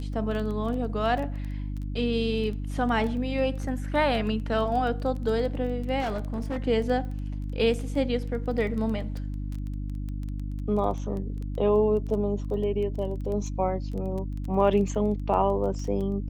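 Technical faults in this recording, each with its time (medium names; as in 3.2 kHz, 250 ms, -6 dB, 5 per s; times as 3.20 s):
crackle 12 per s -32 dBFS
hum 50 Hz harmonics 6 -32 dBFS
6.00–6.64 s: clipped -25.5 dBFS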